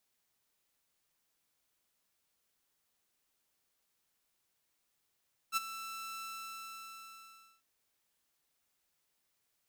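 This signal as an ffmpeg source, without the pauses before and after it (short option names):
-f lavfi -i "aevalsrc='0.0562*(2*mod(1330*t,1)-1)':d=2.1:s=44100,afade=t=in:d=0.047,afade=t=out:st=0.047:d=0.021:silence=0.2,afade=t=out:st=0.69:d=1.41"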